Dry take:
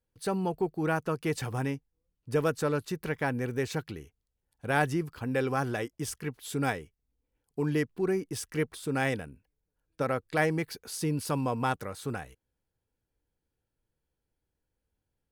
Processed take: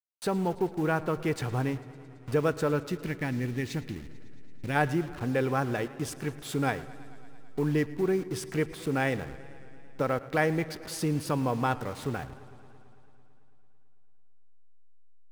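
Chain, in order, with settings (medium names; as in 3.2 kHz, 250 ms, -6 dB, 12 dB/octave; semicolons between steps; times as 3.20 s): send-on-delta sampling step -42 dBFS; treble shelf 4.6 kHz -7 dB; in parallel at +1.5 dB: compression, threshold -43 dBFS, peak gain reduction 20 dB; on the sum: time-frequency box 2.91–4.76 s, 380–1700 Hz -9 dB; on a send at -20 dB: reverberation RT60 1.9 s, pre-delay 3 ms; on the sum: modulated delay 111 ms, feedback 78%, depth 82 cents, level -20 dB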